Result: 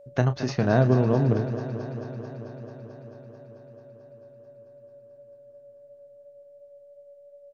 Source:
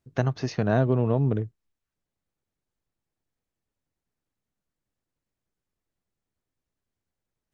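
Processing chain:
steady tone 570 Hz −49 dBFS
double-tracking delay 32 ms −11 dB
feedback echo with a swinging delay time 220 ms, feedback 78%, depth 50 cents, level −11.5 dB
level +1.5 dB

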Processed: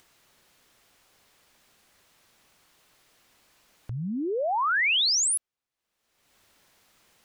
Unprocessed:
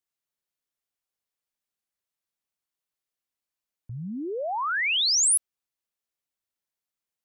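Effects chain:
upward compression, threshold −38 dBFS
low-pass filter 3,900 Hz 6 dB per octave
level +3 dB

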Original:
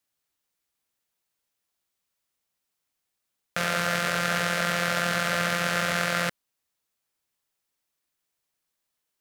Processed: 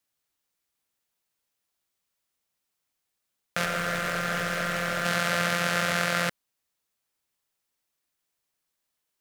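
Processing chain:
0:03.65–0:05.05: hard clipping −21.5 dBFS, distortion −10 dB

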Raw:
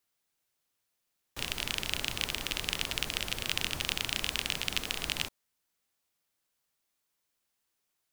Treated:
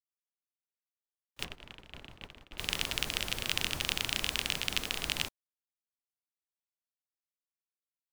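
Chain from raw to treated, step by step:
0:01.44–0:02.58: low-pass filter 1,200 Hz 6 dB per octave
noise gate −38 dBFS, range −28 dB

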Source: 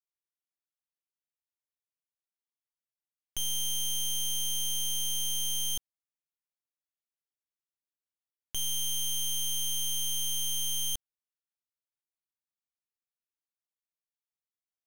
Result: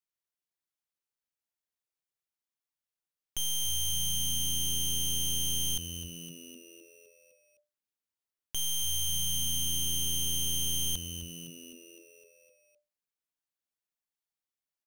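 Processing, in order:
echo with shifted repeats 256 ms, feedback 59%, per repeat −85 Hz, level −11 dB

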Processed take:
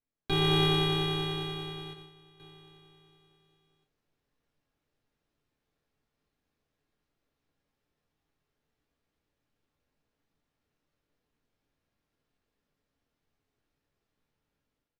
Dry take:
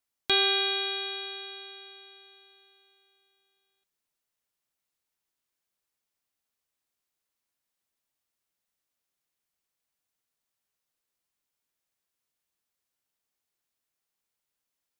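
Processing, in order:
running median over 5 samples
0:01.93–0:02.40: noise gate −50 dBFS, range −10 dB
automatic gain control gain up to 13 dB
in parallel at −6 dB: decimation without filtering 38×
on the sum: spectral tilt −2 dB per octave
on a send at −3 dB: convolution reverb, pre-delay 4 ms
on the sum: downsampling to 32,000 Hz
level −9 dB

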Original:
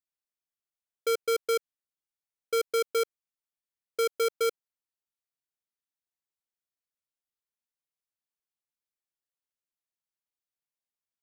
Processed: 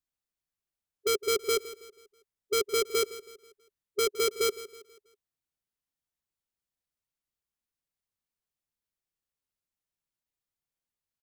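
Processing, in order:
formants moved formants −2 semitones
low-shelf EQ 200 Hz +11.5 dB
on a send: repeating echo 162 ms, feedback 41%, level −16 dB

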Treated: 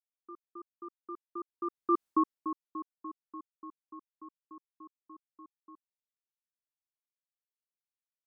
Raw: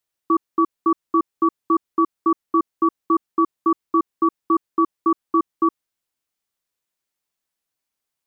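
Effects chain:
source passing by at 0:02.06, 16 m/s, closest 1.3 metres
level −2.5 dB

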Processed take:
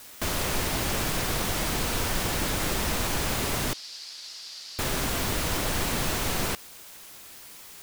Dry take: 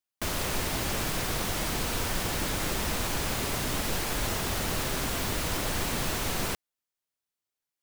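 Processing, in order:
in parallel at −10 dB: bit-depth reduction 6 bits, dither triangular
0:03.73–0:04.79: on the sum: resonant band-pass 4,700 Hz, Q 4.6

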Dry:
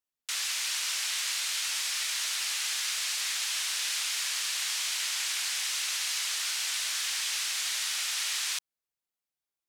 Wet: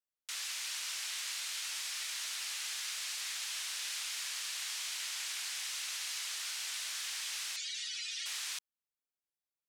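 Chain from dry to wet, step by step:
0:07.56–0:08.26: expanding power law on the bin magnitudes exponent 2.9
level −8 dB

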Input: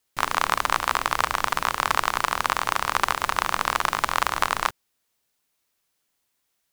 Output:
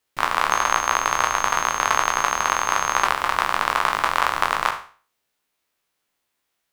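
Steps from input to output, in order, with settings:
peak hold with a decay on every bin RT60 0.41 s
bass and treble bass −4 dB, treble −6 dB
0:00.50–0:03.04: steady tone 6,400 Hz −32 dBFS
level +1 dB

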